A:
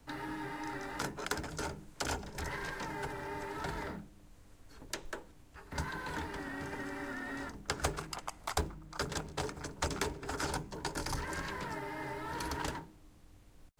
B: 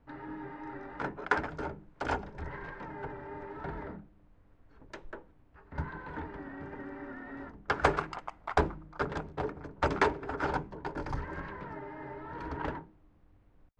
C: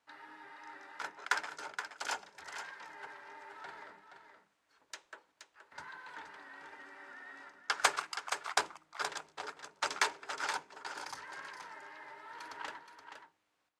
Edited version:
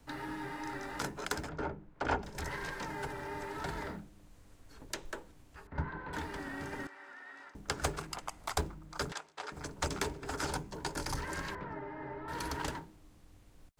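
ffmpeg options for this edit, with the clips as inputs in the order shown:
-filter_complex "[1:a]asplit=3[a][b][c];[2:a]asplit=2[d][e];[0:a]asplit=6[f][g][h][i][j][k];[f]atrim=end=1.492[l];[a]atrim=start=1.488:end=2.232[m];[g]atrim=start=2.228:end=5.672[n];[b]atrim=start=5.668:end=6.132[o];[h]atrim=start=6.128:end=6.872[p];[d]atrim=start=6.868:end=7.552[q];[i]atrim=start=7.548:end=9.122[r];[e]atrim=start=9.118:end=9.522[s];[j]atrim=start=9.518:end=11.552[t];[c]atrim=start=11.548:end=12.282[u];[k]atrim=start=12.278[v];[l][m]acrossfade=d=0.004:c1=hsin:c2=hsin[w];[w][n]acrossfade=d=0.004:c1=hsin:c2=hsin[x];[x][o]acrossfade=d=0.004:c1=hsin:c2=hsin[y];[y][p]acrossfade=d=0.004:c1=hsin:c2=hsin[z];[z][q]acrossfade=d=0.004:c1=hsin:c2=hsin[aa];[aa][r]acrossfade=d=0.004:c1=hsin:c2=hsin[ab];[ab][s]acrossfade=d=0.004:c1=hsin:c2=hsin[ac];[ac][t]acrossfade=d=0.004:c1=hsin:c2=hsin[ad];[ad][u]acrossfade=d=0.004:c1=hsin:c2=hsin[ae];[ae][v]acrossfade=d=0.004:c1=hsin:c2=hsin"

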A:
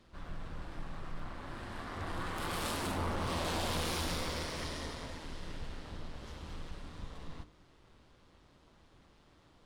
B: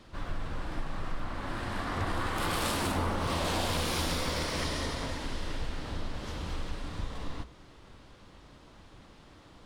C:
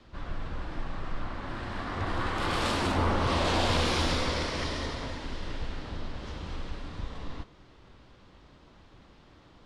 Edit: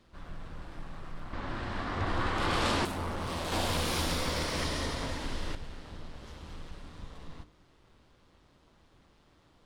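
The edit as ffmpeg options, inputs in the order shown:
-filter_complex "[0:a]asplit=3[a][b][c];[a]atrim=end=1.332[d];[2:a]atrim=start=1.328:end=2.852[e];[b]atrim=start=2.848:end=3.522[f];[1:a]atrim=start=3.518:end=5.552[g];[c]atrim=start=5.548[h];[d][e]acrossfade=d=0.004:c1=hsin:c2=hsin[i];[i][f]acrossfade=d=0.004:c1=hsin:c2=hsin[j];[j][g]acrossfade=d=0.004:c1=hsin:c2=hsin[k];[k][h]acrossfade=d=0.004:c1=hsin:c2=hsin"

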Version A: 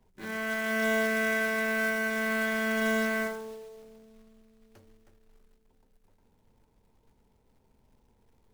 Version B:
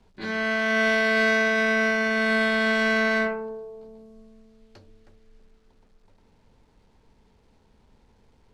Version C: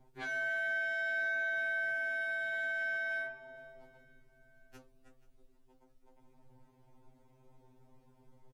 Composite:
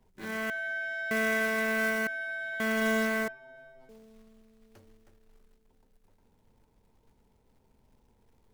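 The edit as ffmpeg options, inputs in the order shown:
-filter_complex "[2:a]asplit=3[a][b][c];[0:a]asplit=4[d][e][f][g];[d]atrim=end=0.502[h];[a]atrim=start=0.498:end=1.112[i];[e]atrim=start=1.108:end=2.072[j];[b]atrim=start=2.068:end=2.602[k];[f]atrim=start=2.598:end=3.282[l];[c]atrim=start=3.278:end=3.892[m];[g]atrim=start=3.888[n];[h][i]acrossfade=d=0.004:c1=hsin:c2=hsin[o];[o][j]acrossfade=d=0.004:c1=hsin:c2=hsin[p];[p][k]acrossfade=d=0.004:c1=hsin:c2=hsin[q];[q][l]acrossfade=d=0.004:c1=hsin:c2=hsin[r];[r][m]acrossfade=d=0.004:c1=hsin:c2=hsin[s];[s][n]acrossfade=d=0.004:c1=hsin:c2=hsin"

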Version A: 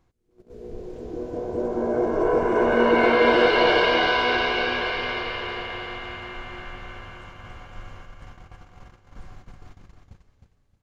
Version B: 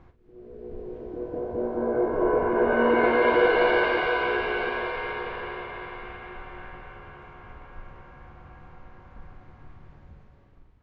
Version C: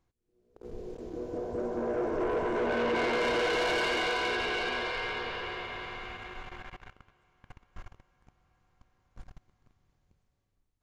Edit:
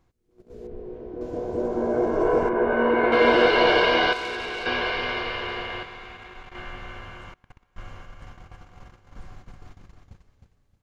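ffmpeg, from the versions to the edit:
-filter_complex "[1:a]asplit=2[a][b];[2:a]asplit=3[c][d][e];[0:a]asplit=6[f][g][h][i][j][k];[f]atrim=end=0.672[l];[a]atrim=start=0.668:end=1.212[m];[g]atrim=start=1.208:end=2.492[n];[b]atrim=start=2.488:end=3.122[o];[h]atrim=start=3.118:end=4.132[p];[c]atrim=start=4.128:end=4.662[q];[i]atrim=start=4.658:end=5.832[r];[d]atrim=start=5.828:end=6.552[s];[j]atrim=start=6.548:end=7.342[t];[e]atrim=start=7.338:end=7.782[u];[k]atrim=start=7.778[v];[l][m]acrossfade=d=0.004:c1=hsin:c2=hsin[w];[w][n]acrossfade=d=0.004:c1=hsin:c2=hsin[x];[x][o]acrossfade=d=0.004:c1=hsin:c2=hsin[y];[y][p]acrossfade=d=0.004:c1=hsin:c2=hsin[z];[z][q]acrossfade=d=0.004:c1=hsin:c2=hsin[aa];[aa][r]acrossfade=d=0.004:c1=hsin:c2=hsin[ab];[ab][s]acrossfade=d=0.004:c1=hsin:c2=hsin[ac];[ac][t]acrossfade=d=0.004:c1=hsin:c2=hsin[ad];[ad][u]acrossfade=d=0.004:c1=hsin:c2=hsin[ae];[ae][v]acrossfade=d=0.004:c1=hsin:c2=hsin"

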